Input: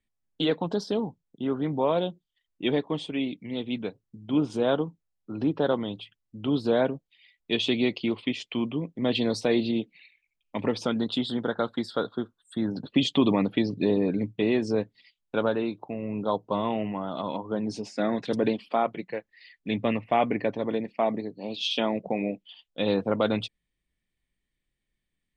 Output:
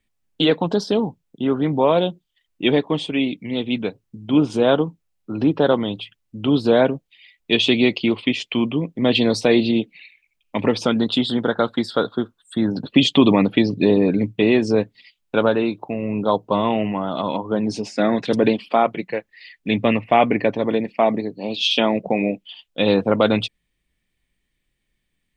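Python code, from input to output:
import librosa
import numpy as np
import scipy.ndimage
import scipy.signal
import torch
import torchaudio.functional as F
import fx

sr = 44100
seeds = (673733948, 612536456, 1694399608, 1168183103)

y = fx.peak_eq(x, sr, hz=2600.0, db=3.0, octaves=0.56)
y = y * librosa.db_to_amplitude(8.0)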